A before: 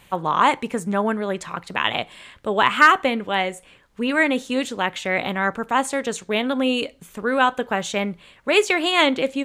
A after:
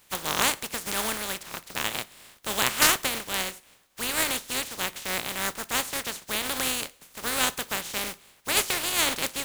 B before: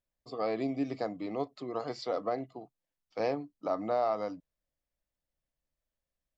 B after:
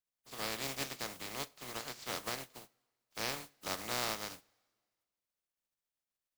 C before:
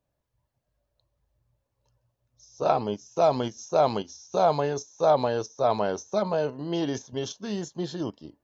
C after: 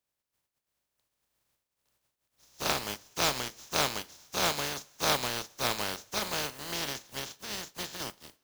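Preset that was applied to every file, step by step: spectral contrast reduction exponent 0.23; two-slope reverb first 0.36 s, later 1.7 s, from -18 dB, DRR 17 dB; trim -7 dB

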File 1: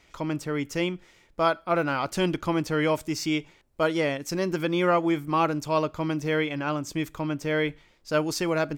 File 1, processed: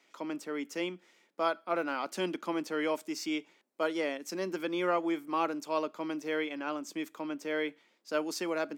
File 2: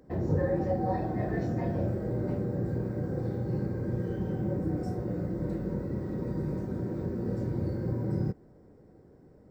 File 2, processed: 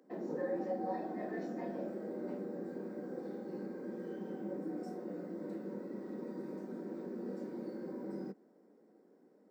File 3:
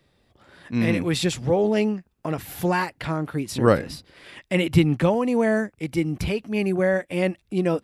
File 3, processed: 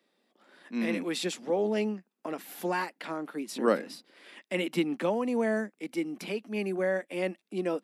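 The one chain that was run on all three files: steep high-pass 200 Hz 48 dB/octave; trim -7 dB

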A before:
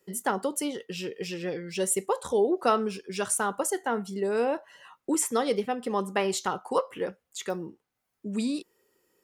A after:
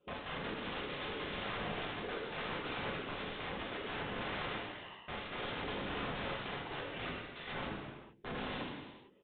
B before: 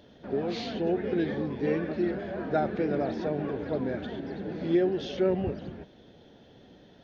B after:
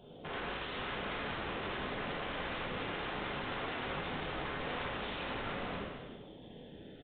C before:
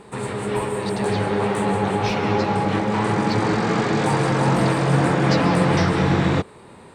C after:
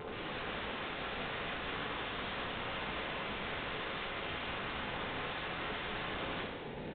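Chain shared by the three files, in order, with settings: hum notches 50/100/150/200/250/300/350/400/450 Hz; comb 4.6 ms, depth 34%; dynamic bell 740 Hz, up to -4 dB, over -37 dBFS, Q 1.4; compression 8:1, threshold -33 dBFS; whisper effect; overload inside the chain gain 27.5 dB; LFO notch saw down 0.67 Hz 730–1900 Hz; integer overflow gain 36.5 dB; gated-style reverb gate 490 ms falling, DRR -4 dB; resampled via 8 kHz; trim -2 dB

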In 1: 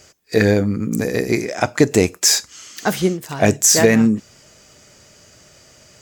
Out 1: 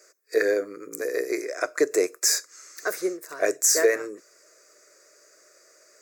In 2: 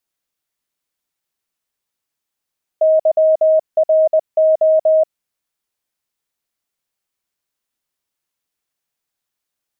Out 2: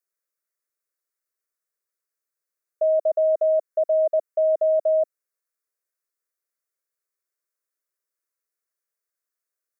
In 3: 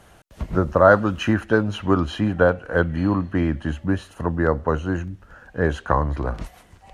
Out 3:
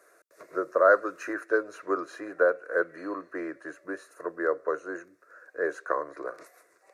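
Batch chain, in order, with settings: high-pass 300 Hz 24 dB/octave; static phaser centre 840 Hz, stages 6; trim -4.5 dB

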